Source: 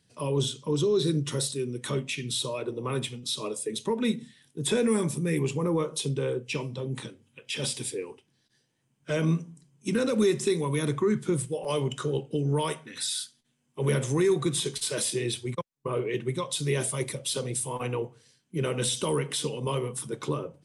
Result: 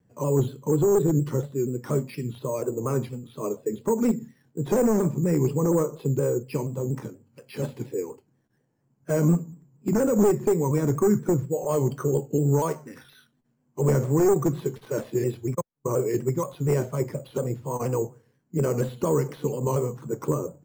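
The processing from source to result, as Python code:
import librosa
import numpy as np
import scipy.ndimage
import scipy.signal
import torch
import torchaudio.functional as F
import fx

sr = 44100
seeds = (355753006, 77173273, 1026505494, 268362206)

y = np.minimum(x, 2.0 * 10.0 ** (-21.0 / 20.0) - x)
y = scipy.signal.sosfilt(scipy.signal.butter(2, 1100.0, 'lowpass', fs=sr, output='sos'), y)
y = np.repeat(scipy.signal.resample_poly(y, 1, 6), 6)[:len(y)]
y = fx.vibrato_shape(y, sr, shape='saw_down', rate_hz=4.2, depth_cents=100.0)
y = y * 10.0 ** (5.0 / 20.0)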